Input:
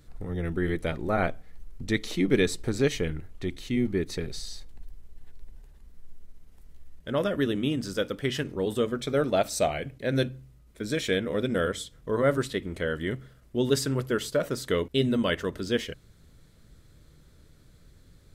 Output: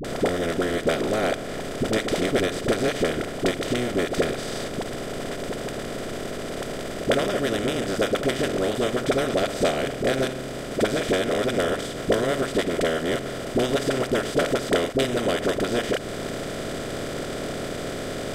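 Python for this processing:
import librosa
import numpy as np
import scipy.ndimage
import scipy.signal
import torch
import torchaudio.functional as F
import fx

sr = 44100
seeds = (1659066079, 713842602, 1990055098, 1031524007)

y = fx.bin_compress(x, sr, power=0.2)
y = fx.transient(y, sr, attack_db=11, sustain_db=-8)
y = fx.dispersion(y, sr, late='highs', ms=46.0, hz=450.0)
y = F.gain(torch.from_numpy(y), -9.0).numpy()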